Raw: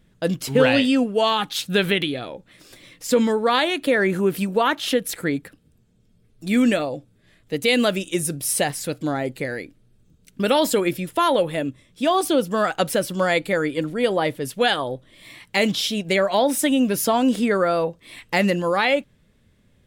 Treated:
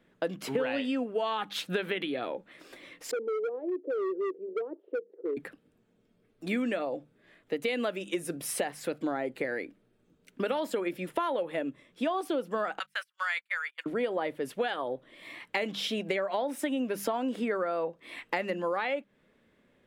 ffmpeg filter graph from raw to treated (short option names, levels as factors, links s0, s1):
-filter_complex "[0:a]asettb=1/sr,asplit=3[s0][s1][s2];[s0]atrim=end=3.114[s3];[s1]atrim=start=3.11:end=5.37,asetpts=PTS-STARTPTS,afade=t=in:d=0.004:c=qsin,afade=t=out:st=2.256:d=0.004:c=qsin,asuperpass=centerf=410:order=4:qfactor=3.4,asoftclip=type=hard:threshold=0.0531[s4];[s2]atrim=start=5.366[s5];[s3][s4]acrossfade=d=0.004:c1=hsin:c2=qsin[s6];[s6][s5]acrossfade=d=0.004:c1=qsin:c2=hsin,asettb=1/sr,asplit=3[s7][s8][s9];[s7]atrim=end=12.794[s10];[s8]atrim=start=12.79:end=13.86,asetpts=PTS-STARTPTS,afade=t=in:d=0.004:c=qsin,afade=t=out:st=1.066:d=0.004:c=qsin,agate=range=0.02:threshold=0.0708:ratio=16:release=100:detection=peak,highpass=f=1300:w=0.5412,highpass=f=1300:w=1.3066,asoftclip=type=hard:threshold=0.211[s11];[s9]atrim=start=13.856[s12];[s10][s11]acrossfade=d=0.004:c1=hsin:c2=qsin[s13];[s13][s12]acrossfade=d=0.004:c1=qsin:c2=hsin,acrossover=split=230 2800:gain=0.112 1 0.224[s14][s15][s16];[s14][s15][s16]amix=inputs=3:normalize=0,bandreject=f=50:t=h:w=6,bandreject=f=100:t=h:w=6,bandreject=f=150:t=h:w=6,bandreject=f=200:t=h:w=6,acompressor=threshold=0.0355:ratio=6,volume=1.12"